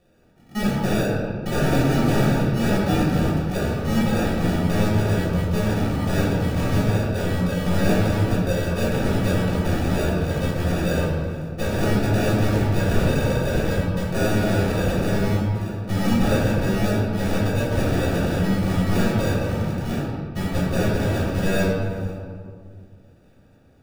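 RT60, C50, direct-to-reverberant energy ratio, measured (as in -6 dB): 2.1 s, -2.0 dB, -9.5 dB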